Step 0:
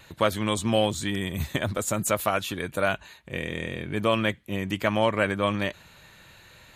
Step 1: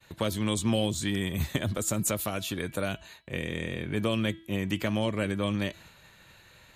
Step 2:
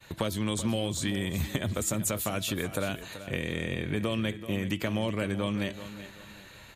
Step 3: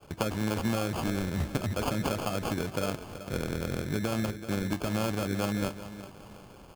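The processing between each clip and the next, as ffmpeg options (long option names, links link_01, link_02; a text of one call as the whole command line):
ffmpeg -i in.wav -filter_complex "[0:a]agate=range=-33dB:threshold=-47dB:ratio=3:detection=peak,acrossover=split=420|3000[link_01][link_02][link_03];[link_02]acompressor=threshold=-35dB:ratio=6[link_04];[link_01][link_04][link_03]amix=inputs=3:normalize=0,bandreject=frequency=328:width_type=h:width=4,bandreject=frequency=656:width_type=h:width=4,bandreject=frequency=984:width_type=h:width=4,bandreject=frequency=1312:width_type=h:width=4,bandreject=frequency=1640:width_type=h:width=4,bandreject=frequency=1968:width_type=h:width=4,bandreject=frequency=2296:width_type=h:width=4,bandreject=frequency=2624:width_type=h:width=4,bandreject=frequency=2952:width_type=h:width=4,bandreject=frequency=3280:width_type=h:width=4,bandreject=frequency=3608:width_type=h:width=4,bandreject=frequency=3936:width_type=h:width=4,bandreject=frequency=4264:width_type=h:width=4,bandreject=frequency=4592:width_type=h:width=4,bandreject=frequency=4920:width_type=h:width=4,bandreject=frequency=5248:width_type=h:width=4" out.wav
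ffmpeg -i in.wav -af "acompressor=threshold=-34dB:ratio=2.5,aecho=1:1:382|764|1146:0.224|0.0761|0.0259,volume=5dB" out.wav
ffmpeg -i in.wav -af "acrusher=samples=23:mix=1:aa=0.000001" out.wav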